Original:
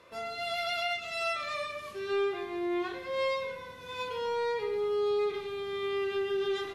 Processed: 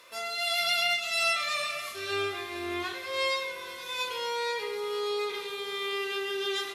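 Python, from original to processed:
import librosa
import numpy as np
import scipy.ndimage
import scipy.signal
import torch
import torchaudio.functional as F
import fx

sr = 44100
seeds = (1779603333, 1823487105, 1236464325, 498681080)

y = fx.octave_divider(x, sr, octaves=2, level_db=-2.0, at=(0.6, 2.93))
y = fx.tilt_eq(y, sr, slope=4.0)
y = fx.echo_feedback(y, sr, ms=475, feedback_pct=57, wet_db=-16.0)
y = y * librosa.db_to_amplitude(1.5)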